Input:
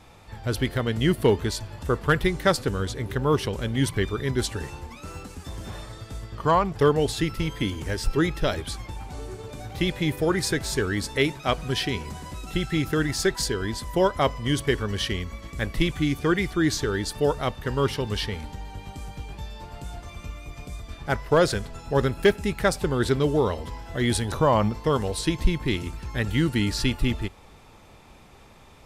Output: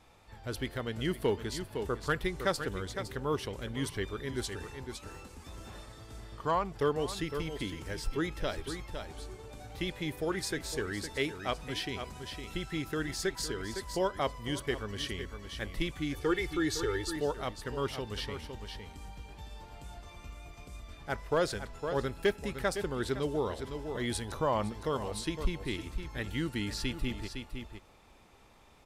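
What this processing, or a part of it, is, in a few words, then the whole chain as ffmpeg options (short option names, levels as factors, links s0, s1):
ducked delay: -filter_complex "[0:a]asplit=3[s0][s1][s2];[s1]adelay=509,volume=0.447[s3];[s2]apad=whole_len=1295158[s4];[s3][s4]sidechaincompress=threshold=0.0355:ratio=8:attack=16:release=114[s5];[s0][s5]amix=inputs=2:normalize=0,asettb=1/sr,asplit=3[s6][s7][s8];[s6]atrim=end=16.144[s9];[s7]atrim=start=16.14:end=17.16,asetpts=PTS-STARTPTS,afade=t=in:d=0.004:c=qsin,afade=t=out:st=1.016:d=0.004:c=qsin,aecho=1:1:2.3:0.85,atrim=end_sample=44982[s10];[s8]atrim=start=17.156[s11];[s9][s10]acrossfade=d=0.004:c1=hsin:c2=qsin[s12];[s12][s11]acrossfade=d=0.004:c1=qsin:c2=hsin,equalizer=f=130:w=0.85:g=-4.5,volume=0.355"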